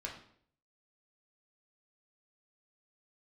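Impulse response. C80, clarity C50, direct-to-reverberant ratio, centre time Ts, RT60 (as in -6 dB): 10.5 dB, 6.5 dB, -2.0 dB, 25 ms, 0.60 s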